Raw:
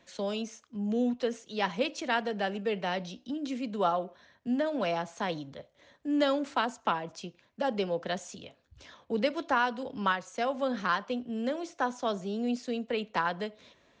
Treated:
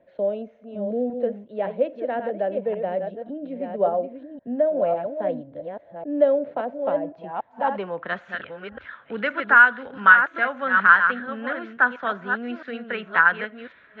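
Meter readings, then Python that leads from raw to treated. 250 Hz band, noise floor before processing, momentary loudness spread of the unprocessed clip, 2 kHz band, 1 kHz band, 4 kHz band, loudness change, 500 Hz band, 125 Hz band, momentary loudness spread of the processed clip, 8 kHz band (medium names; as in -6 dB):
+0.5 dB, -67 dBFS, 11 LU, +17.0 dB, +8.5 dB, -4.5 dB, +10.0 dB, +8.0 dB, 0.0 dB, 19 LU, under -30 dB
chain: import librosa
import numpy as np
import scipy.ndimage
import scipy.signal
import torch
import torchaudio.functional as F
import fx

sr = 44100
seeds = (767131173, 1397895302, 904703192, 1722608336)

y = fx.reverse_delay(x, sr, ms=549, wet_db=-6.5)
y = fx.band_shelf(y, sr, hz=2500.0, db=13.5, octaves=1.7)
y = fx.filter_sweep_lowpass(y, sr, from_hz=600.0, to_hz=1400.0, start_s=6.95, end_s=8.33, q=4.6)
y = y * 10.0 ** (-1.5 / 20.0)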